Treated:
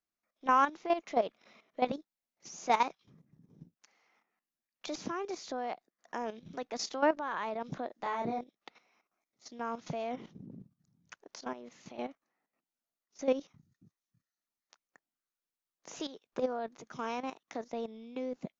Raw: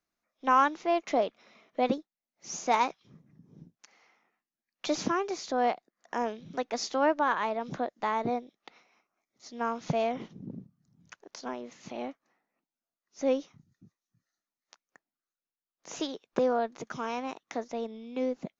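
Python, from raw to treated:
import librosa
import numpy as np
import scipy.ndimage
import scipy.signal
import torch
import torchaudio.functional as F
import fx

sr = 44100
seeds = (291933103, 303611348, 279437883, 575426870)

y = fx.level_steps(x, sr, step_db=12)
y = fx.doubler(y, sr, ms=30.0, db=-2.5, at=(7.87, 8.41))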